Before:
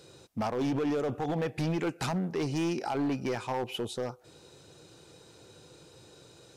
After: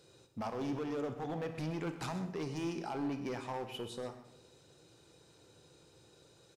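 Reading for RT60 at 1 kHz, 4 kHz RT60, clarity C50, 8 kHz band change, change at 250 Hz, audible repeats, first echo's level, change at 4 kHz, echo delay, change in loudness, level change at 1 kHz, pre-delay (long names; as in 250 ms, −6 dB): 0.75 s, 0.70 s, 9.0 dB, −8.0 dB, −7.5 dB, 1, −14.5 dB, −7.5 dB, 127 ms, −7.5 dB, −7.0 dB, 30 ms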